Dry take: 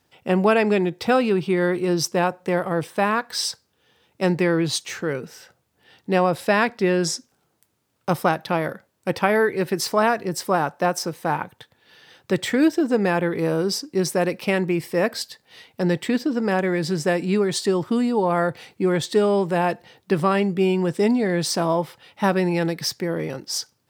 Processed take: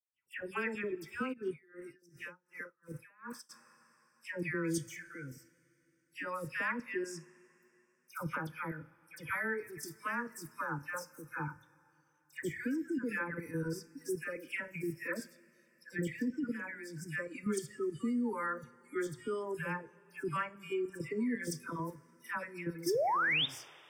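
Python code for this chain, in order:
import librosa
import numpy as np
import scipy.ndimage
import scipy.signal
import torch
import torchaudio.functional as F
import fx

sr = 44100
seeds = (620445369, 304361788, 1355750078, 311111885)

y = fx.noise_reduce_blind(x, sr, reduce_db=21)
y = fx.peak_eq(y, sr, hz=560.0, db=-2.0, octaves=0.52)
y = fx.hum_notches(y, sr, base_hz=60, count=2)
y = fx.level_steps(y, sr, step_db=12)
y = fx.fixed_phaser(y, sr, hz=1700.0, stages=4)
y = fx.dispersion(y, sr, late='lows', ms=131.0, hz=1600.0)
y = fx.spec_paint(y, sr, seeds[0], shape='rise', start_s=22.86, length_s=0.6, low_hz=320.0, high_hz=3800.0, level_db=-24.0)
y = fx.rev_double_slope(y, sr, seeds[1], early_s=0.34, late_s=3.4, knee_db=-18, drr_db=13.0)
y = fx.tremolo_db(y, sr, hz=2.7, depth_db=32, at=(1.32, 3.49), fade=0.02)
y = F.gain(torch.from_numpy(y), -6.5).numpy()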